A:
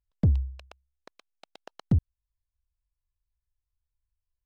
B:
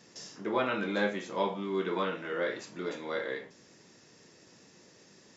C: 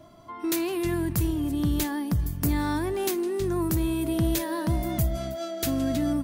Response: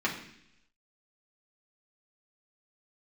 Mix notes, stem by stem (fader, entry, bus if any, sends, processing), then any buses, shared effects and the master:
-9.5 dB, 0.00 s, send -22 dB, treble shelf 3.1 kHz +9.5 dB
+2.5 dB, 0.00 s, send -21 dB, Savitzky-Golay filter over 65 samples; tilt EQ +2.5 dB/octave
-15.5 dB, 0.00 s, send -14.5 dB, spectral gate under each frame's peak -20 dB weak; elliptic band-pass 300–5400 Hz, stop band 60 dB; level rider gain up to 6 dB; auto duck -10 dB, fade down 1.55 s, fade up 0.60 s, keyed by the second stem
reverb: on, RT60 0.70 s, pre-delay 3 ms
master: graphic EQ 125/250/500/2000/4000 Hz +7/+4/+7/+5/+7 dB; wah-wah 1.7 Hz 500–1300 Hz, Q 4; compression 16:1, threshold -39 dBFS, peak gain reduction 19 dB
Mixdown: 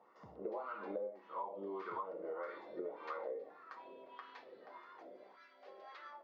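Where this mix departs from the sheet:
stem A -9.5 dB -> -17.5 dB; reverb return +7.5 dB

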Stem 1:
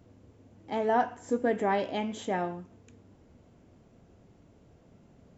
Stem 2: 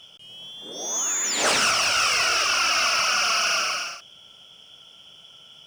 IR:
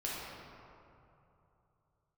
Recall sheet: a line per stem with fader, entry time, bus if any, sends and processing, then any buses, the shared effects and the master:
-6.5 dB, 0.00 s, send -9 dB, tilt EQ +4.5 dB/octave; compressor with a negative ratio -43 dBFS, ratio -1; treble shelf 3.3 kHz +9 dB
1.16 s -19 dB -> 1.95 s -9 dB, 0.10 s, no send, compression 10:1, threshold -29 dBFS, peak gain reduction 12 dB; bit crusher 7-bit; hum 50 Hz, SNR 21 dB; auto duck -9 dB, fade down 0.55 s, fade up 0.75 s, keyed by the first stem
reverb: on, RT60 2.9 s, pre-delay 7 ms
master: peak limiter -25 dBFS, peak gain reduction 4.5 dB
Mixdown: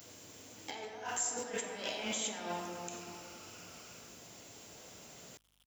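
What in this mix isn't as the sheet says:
stem 1: send -9 dB -> -0.5 dB; stem 2 -19.0 dB -> -26.0 dB

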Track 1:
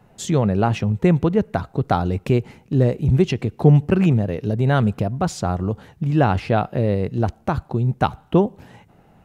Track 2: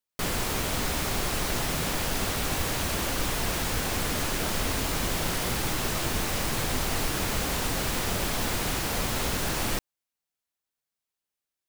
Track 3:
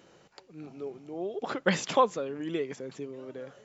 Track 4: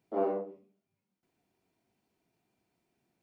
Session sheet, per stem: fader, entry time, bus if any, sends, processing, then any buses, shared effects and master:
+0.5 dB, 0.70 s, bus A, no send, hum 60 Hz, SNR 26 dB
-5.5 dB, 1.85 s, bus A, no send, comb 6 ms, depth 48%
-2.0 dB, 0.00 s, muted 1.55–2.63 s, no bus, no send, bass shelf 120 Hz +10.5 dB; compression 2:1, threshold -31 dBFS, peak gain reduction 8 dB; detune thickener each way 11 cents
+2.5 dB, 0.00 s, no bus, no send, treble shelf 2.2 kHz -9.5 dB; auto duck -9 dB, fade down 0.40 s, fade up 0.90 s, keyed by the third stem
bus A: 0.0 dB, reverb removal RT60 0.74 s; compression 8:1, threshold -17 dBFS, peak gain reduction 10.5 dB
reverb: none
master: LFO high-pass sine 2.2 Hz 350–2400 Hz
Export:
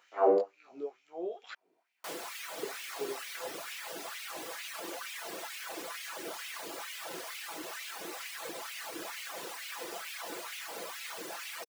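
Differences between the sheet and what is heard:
stem 1: muted; stem 2 -5.5 dB -> -12.0 dB; stem 4 +2.5 dB -> +11.5 dB

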